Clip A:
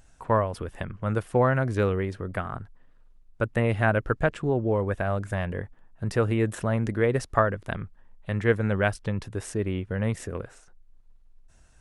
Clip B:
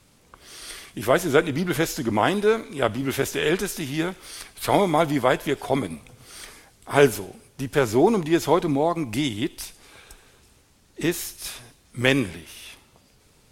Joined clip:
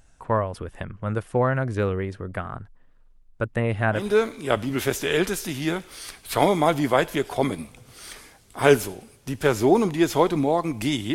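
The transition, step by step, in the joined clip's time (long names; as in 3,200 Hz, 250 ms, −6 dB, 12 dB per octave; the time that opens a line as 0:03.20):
clip A
0:04.02: continue with clip B from 0:02.34, crossfade 0.22 s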